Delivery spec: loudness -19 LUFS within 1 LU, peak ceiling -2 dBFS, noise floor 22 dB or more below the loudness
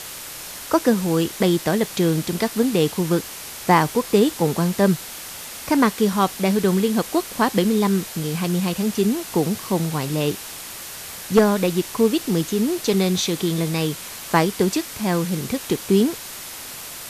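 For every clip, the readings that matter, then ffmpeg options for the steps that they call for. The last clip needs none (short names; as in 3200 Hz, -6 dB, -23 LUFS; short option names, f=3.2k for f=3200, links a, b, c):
noise floor -35 dBFS; noise floor target -43 dBFS; loudness -21.0 LUFS; peak -2.5 dBFS; loudness target -19.0 LUFS
-> -af "afftdn=nr=8:nf=-35"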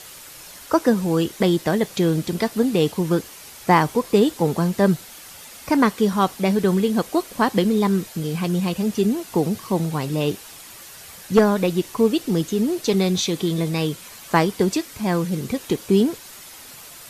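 noise floor -42 dBFS; noise floor target -43 dBFS
-> -af "afftdn=nr=6:nf=-42"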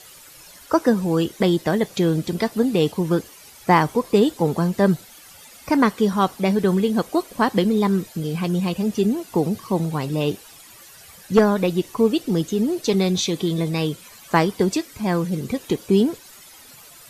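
noise floor -46 dBFS; loudness -21.0 LUFS; peak -3.0 dBFS; loudness target -19.0 LUFS
-> -af "volume=2dB,alimiter=limit=-2dB:level=0:latency=1"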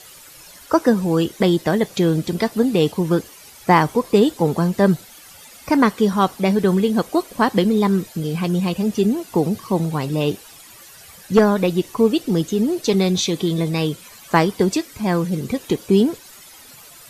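loudness -19.0 LUFS; peak -2.0 dBFS; noise floor -44 dBFS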